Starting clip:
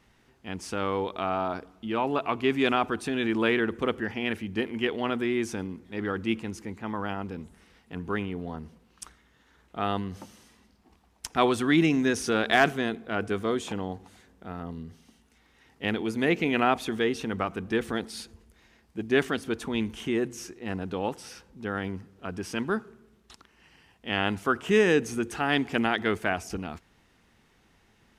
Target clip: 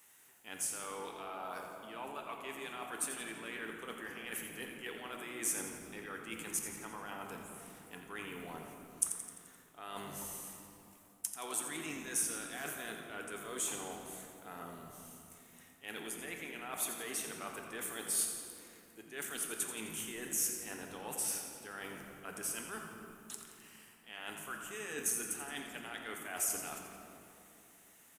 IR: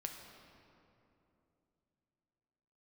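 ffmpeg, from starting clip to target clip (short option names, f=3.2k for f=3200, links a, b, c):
-filter_complex "[0:a]highpass=f=1.1k:p=1,areverse,acompressor=threshold=-39dB:ratio=16,areverse,aexciter=amount=9.8:drive=3.8:freq=7k,asplit=7[a][b][c][d][e][f][g];[b]adelay=86,afreqshift=-53,volume=-10dB[h];[c]adelay=172,afreqshift=-106,volume=-15.2dB[i];[d]adelay=258,afreqshift=-159,volume=-20.4dB[j];[e]adelay=344,afreqshift=-212,volume=-25.6dB[k];[f]adelay=430,afreqshift=-265,volume=-30.8dB[l];[g]adelay=516,afreqshift=-318,volume=-36dB[m];[a][h][i][j][k][l][m]amix=inputs=7:normalize=0[n];[1:a]atrim=start_sample=2205[o];[n][o]afir=irnorm=-1:irlink=0,volume=1.5dB"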